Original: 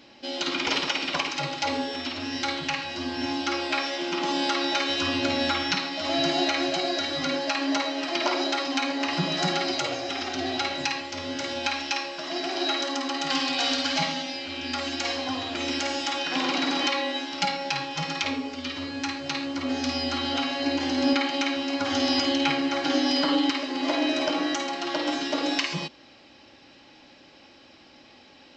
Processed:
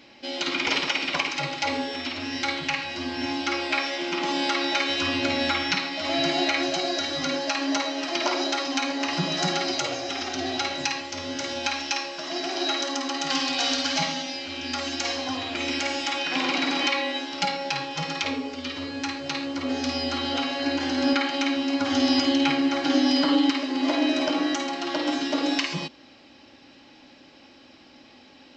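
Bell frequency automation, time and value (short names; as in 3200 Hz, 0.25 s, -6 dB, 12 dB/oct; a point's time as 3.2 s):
bell +5 dB 0.4 oct
2200 Hz
from 6.63 s 6100 Hz
from 15.37 s 2300 Hz
from 17.18 s 460 Hz
from 20.59 s 1500 Hz
from 21.41 s 260 Hz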